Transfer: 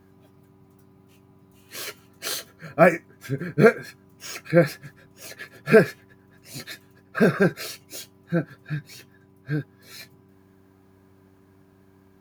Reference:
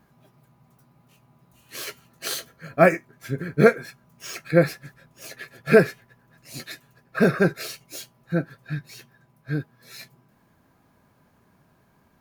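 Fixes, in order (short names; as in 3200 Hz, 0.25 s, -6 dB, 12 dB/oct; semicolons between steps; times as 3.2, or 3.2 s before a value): de-hum 96 Hz, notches 4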